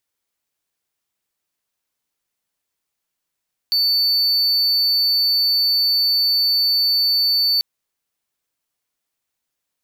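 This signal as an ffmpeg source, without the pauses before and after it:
ffmpeg -f lavfi -i "aevalsrc='0.237*(1-4*abs(mod(4500*t+0.25,1)-0.5))':duration=3.89:sample_rate=44100" out.wav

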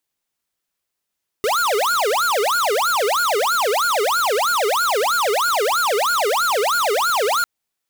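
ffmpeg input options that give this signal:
ffmpeg -f lavfi -i "aevalsrc='0.119*(2*lt(mod((921*t-519/(2*PI*3.1)*sin(2*PI*3.1*t)),1),0.5)-1)':duration=6:sample_rate=44100" out.wav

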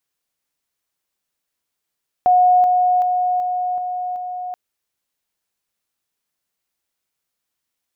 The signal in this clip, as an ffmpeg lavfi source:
ffmpeg -f lavfi -i "aevalsrc='pow(10,(-9.5-3*floor(t/0.38))/20)*sin(2*PI*726*t)':duration=2.28:sample_rate=44100" out.wav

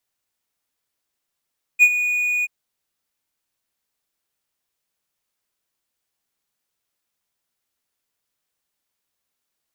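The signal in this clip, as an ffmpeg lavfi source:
ffmpeg -f lavfi -i "aevalsrc='0.596*(1-4*abs(mod(2460*t+0.25,1)-0.5))':duration=0.681:sample_rate=44100,afade=type=in:duration=0.037,afade=type=out:start_time=0.037:duration=0.059:silence=0.251,afade=type=out:start_time=0.65:duration=0.031" out.wav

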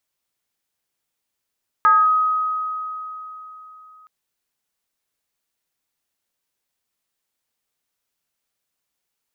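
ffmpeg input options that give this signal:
ffmpeg -f lavfi -i "aevalsrc='0.335*pow(10,-3*t/3.67)*sin(2*PI*1260*t+0.56*clip(1-t/0.23,0,1)*sin(2*PI*0.3*1260*t))':duration=2.22:sample_rate=44100" out.wav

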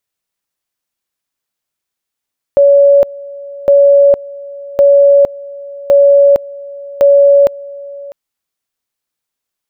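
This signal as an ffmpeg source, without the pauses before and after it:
ffmpeg -f lavfi -i "aevalsrc='pow(10,(-3-21.5*gte(mod(t,1.11),0.46))/20)*sin(2*PI*564*t)':duration=5.55:sample_rate=44100" out.wav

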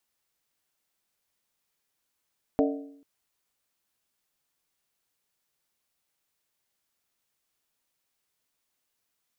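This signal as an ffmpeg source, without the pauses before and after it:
ffmpeg -f lavfi -i "aevalsrc='0.1*pow(10,-3*t/0.72)*sin(2*PI*281*t)+0.075*pow(10,-3*t/0.57)*sin(2*PI*447.9*t)+0.0562*pow(10,-3*t/0.493)*sin(2*PI*600.2*t)+0.0422*pow(10,-3*t/0.475)*sin(2*PI*645.2*t)+0.0316*pow(10,-3*t/0.442)*sin(2*PI*745.5*t)':duration=0.44:sample_rate=44100" out.wav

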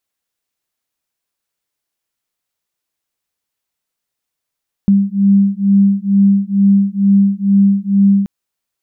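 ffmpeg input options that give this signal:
ffmpeg -f lavfi -i "aevalsrc='0.266*(sin(2*PI*197*t)+sin(2*PI*199.2*t))':duration=3.38:sample_rate=44100" out.wav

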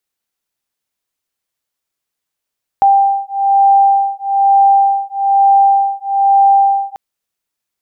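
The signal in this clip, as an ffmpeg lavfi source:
ffmpeg -f lavfi -i "aevalsrc='0.282*(sin(2*PI*790*t)+sin(2*PI*791.1*t))':duration=4.14:sample_rate=44100" out.wav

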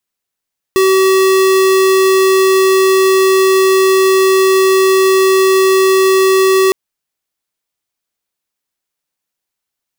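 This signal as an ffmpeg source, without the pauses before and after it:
ffmpeg -f lavfi -i "aevalsrc='0.335*(2*lt(mod(381*t,1),0.5)-1)':duration=5.96:sample_rate=44100" out.wav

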